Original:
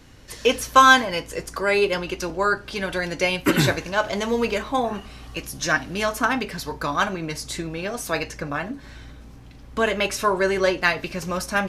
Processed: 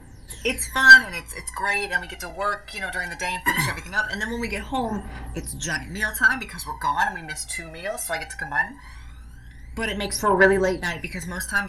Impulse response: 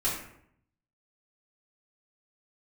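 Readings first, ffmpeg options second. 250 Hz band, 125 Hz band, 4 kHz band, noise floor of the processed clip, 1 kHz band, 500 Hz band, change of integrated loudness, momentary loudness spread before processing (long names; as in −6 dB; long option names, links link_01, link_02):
−4.0 dB, −3.0 dB, −2.5 dB, −43 dBFS, −4.5 dB, −4.5 dB, +1.0 dB, 12 LU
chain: -af "superequalizer=9b=2.51:11b=3.16:16b=3.16,acontrast=65,aphaser=in_gain=1:out_gain=1:delay=1.6:decay=0.79:speed=0.19:type=triangular,volume=-14dB"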